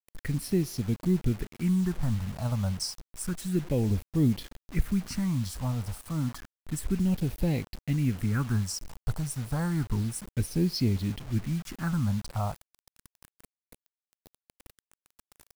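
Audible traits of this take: phasing stages 4, 0.3 Hz, lowest notch 320–1400 Hz; a quantiser's noise floor 8-bit, dither none

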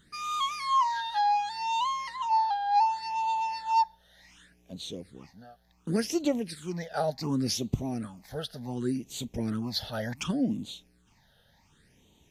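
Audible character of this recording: phasing stages 8, 0.68 Hz, lowest notch 300–1600 Hz

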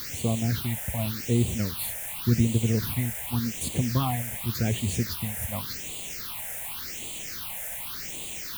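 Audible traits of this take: a quantiser's noise floor 6-bit, dither triangular; phasing stages 6, 0.88 Hz, lowest notch 300–1500 Hz

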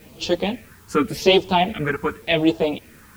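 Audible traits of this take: phasing stages 4, 0.88 Hz, lowest notch 610–2000 Hz; a quantiser's noise floor 10-bit, dither triangular; a shimmering, thickened sound

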